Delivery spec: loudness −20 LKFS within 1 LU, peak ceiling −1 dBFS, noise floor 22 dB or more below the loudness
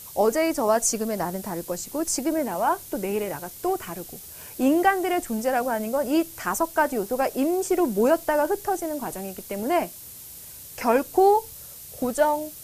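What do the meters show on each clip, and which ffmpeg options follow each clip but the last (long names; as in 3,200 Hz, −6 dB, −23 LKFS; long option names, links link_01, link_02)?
background noise floor −42 dBFS; target noise floor −47 dBFS; integrated loudness −24.5 LKFS; sample peak −8.0 dBFS; target loudness −20.0 LKFS
→ -af "afftdn=noise_reduction=6:noise_floor=-42"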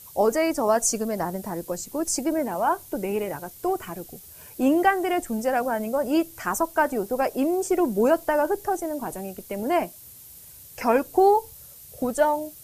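background noise floor −46 dBFS; target noise floor −47 dBFS
→ -af "afftdn=noise_reduction=6:noise_floor=-46"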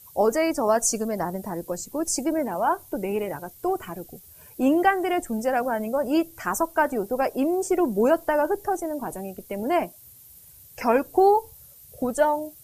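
background noise floor −49 dBFS; integrated loudness −24.5 LKFS; sample peak −8.0 dBFS; target loudness −20.0 LKFS
→ -af "volume=4.5dB"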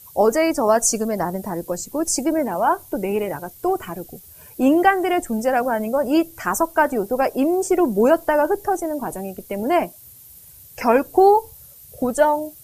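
integrated loudness −20.0 LKFS; sample peak −3.5 dBFS; background noise floor −45 dBFS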